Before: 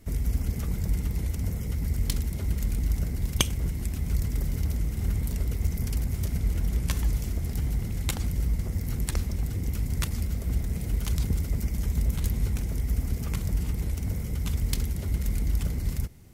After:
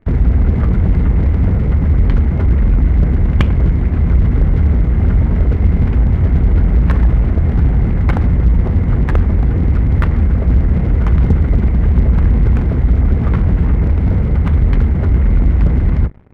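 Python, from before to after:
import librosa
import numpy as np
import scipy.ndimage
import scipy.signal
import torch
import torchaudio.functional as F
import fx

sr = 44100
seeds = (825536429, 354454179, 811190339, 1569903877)

y = scipy.signal.sosfilt(scipy.signal.butter(4, 1800.0, 'lowpass', fs=sr, output='sos'), x)
y = fx.hum_notches(y, sr, base_hz=50, count=4)
y = fx.leveller(y, sr, passes=3)
y = y * librosa.db_to_amplitude(7.0)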